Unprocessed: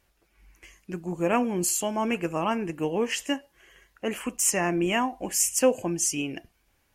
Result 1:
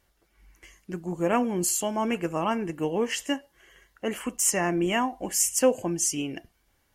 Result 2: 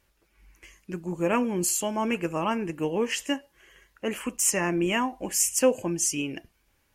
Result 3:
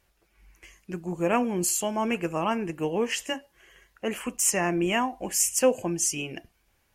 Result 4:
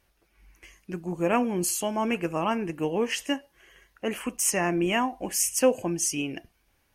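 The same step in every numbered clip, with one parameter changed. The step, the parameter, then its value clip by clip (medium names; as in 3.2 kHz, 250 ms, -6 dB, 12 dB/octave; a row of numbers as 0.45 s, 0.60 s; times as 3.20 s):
band-stop, frequency: 2.5 kHz, 720 Hz, 280 Hz, 7.3 kHz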